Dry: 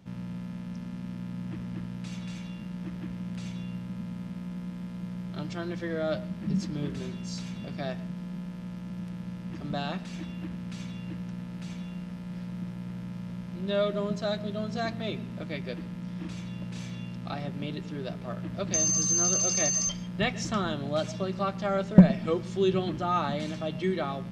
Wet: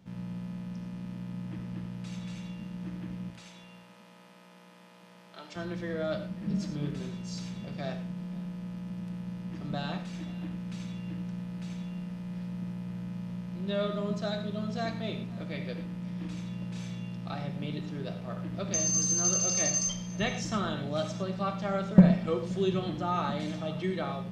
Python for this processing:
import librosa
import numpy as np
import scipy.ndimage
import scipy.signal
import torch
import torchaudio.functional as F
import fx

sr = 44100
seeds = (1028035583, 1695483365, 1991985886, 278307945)

y = fx.highpass(x, sr, hz=570.0, slope=12, at=(3.3, 5.56))
y = y + 10.0 ** (-22.0 / 20.0) * np.pad(y, (int(527 * sr / 1000.0), 0))[:len(y)]
y = fx.rev_gated(y, sr, seeds[0], gate_ms=130, shape='flat', drr_db=5.5)
y = y * librosa.db_to_amplitude(-3.5)